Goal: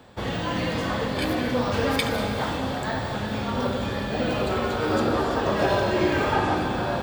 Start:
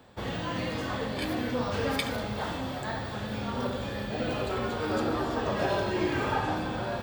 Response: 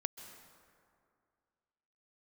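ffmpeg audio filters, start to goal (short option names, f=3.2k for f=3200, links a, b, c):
-filter_complex "[1:a]atrim=start_sample=2205,asetrate=35721,aresample=44100[a];[0:a][a]afir=irnorm=-1:irlink=0,volume=5.5dB"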